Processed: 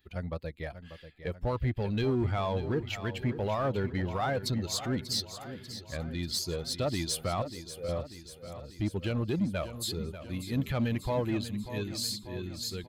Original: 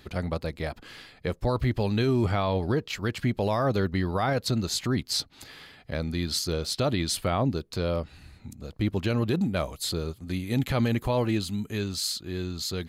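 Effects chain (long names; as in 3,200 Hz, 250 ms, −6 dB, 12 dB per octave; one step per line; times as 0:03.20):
spectral dynamics exaggerated over time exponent 1.5
0:07.42–0:07.89: formant resonators in series e
in parallel at −3.5 dB: hard clipping −29 dBFS, distortion −8 dB
on the sum: repeating echo 590 ms, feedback 59%, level −12 dB
level −5 dB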